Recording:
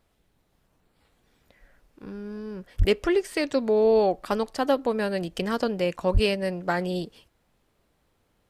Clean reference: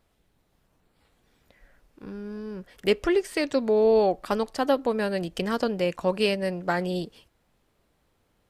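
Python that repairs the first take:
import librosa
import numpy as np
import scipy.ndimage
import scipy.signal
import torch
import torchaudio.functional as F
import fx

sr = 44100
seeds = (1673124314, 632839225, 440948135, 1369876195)

y = fx.fix_declip(x, sr, threshold_db=-12.0)
y = fx.highpass(y, sr, hz=140.0, slope=24, at=(2.78, 2.9), fade=0.02)
y = fx.highpass(y, sr, hz=140.0, slope=24, at=(6.13, 6.25), fade=0.02)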